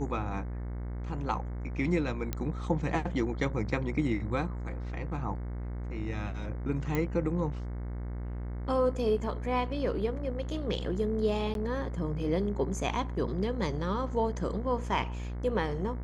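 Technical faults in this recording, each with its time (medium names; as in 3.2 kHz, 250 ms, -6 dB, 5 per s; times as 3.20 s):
buzz 60 Hz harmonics 37 -36 dBFS
2.33 s: pop -17 dBFS
6.95 s: pop -17 dBFS
11.54–11.55 s: dropout 12 ms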